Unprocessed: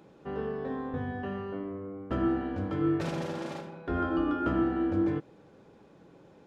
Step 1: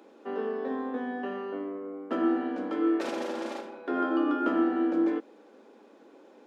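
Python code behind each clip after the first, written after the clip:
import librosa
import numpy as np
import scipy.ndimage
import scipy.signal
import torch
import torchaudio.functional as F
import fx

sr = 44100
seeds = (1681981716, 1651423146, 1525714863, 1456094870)

y = scipy.signal.sosfilt(scipy.signal.ellip(4, 1.0, 40, 230.0, 'highpass', fs=sr, output='sos'), x)
y = y * 10.0 ** (3.0 / 20.0)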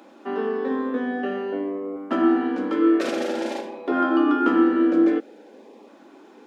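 y = fx.filter_lfo_notch(x, sr, shape='saw_up', hz=0.51, low_hz=410.0, high_hz=1600.0, q=2.6)
y = y * 10.0 ** (8.0 / 20.0)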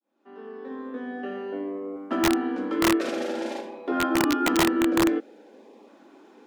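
y = fx.fade_in_head(x, sr, length_s=1.82)
y = (np.mod(10.0 ** (11.0 / 20.0) * y + 1.0, 2.0) - 1.0) / 10.0 ** (11.0 / 20.0)
y = y * 10.0 ** (-3.5 / 20.0)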